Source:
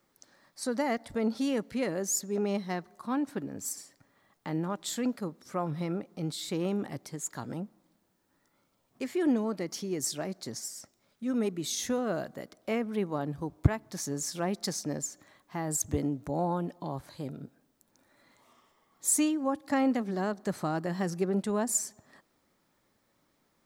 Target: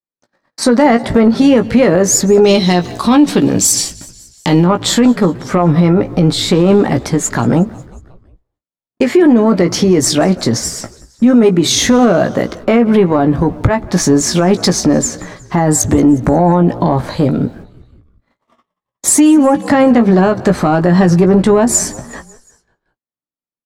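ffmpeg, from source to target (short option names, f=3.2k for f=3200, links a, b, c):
-filter_complex "[0:a]aemphasis=mode=reproduction:type=75kf,agate=range=-57dB:threshold=-60dB:ratio=16:detection=peak,asettb=1/sr,asplit=3[a][b][c];[a]atrim=end=2.444[d];[b]atrim=start=2.44:end=4.64,asetpts=PTS-STARTPTS,afade=t=in:d=0.004:c=qsin,afade=t=out:st=2.196:d=0.004:c=qsin,highshelf=f=2.3k:t=q:w=1.5:g=11[e];[c]atrim=start=4.636[f];[d][e]acrossfade=d=0.004:c1=hsin:c2=qsin[g];[g][f]acrossfade=d=0.004:c1=qsin:c2=hsin,acompressor=threshold=-34dB:ratio=2,asoftclip=type=tanh:threshold=-24dB,asplit=2[h][i];[i]adelay=17,volume=-7dB[j];[h][j]amix=inputs=2:normalize=0,asplit=5[k][l][m][n][o];[l]adelay=181,afreqshift=-58,volume=-23dB[p];[m]adelay=362,afreqshift=-116,volume=-27.4dB[q];[n]adelay=543,afreqshift=-174,volume=-31.9dB[r];[o]adelay=724,afreqshift=-232,volume=-36.3dB[s];[k][p][q][r][s]amix=inputs=5:normalize=0,alimiter=level_in=30dB:limit=-1dB:release=50:level=0:latency=1,volume=-1dB"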